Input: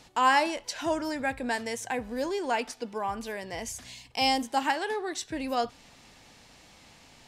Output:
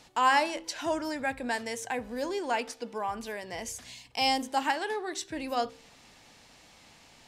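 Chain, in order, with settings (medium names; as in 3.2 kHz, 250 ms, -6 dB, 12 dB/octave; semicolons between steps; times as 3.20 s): bass shelf 180 Hz -3.5 dB; de-hum 65.21 Hz, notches 8; trim -1 dB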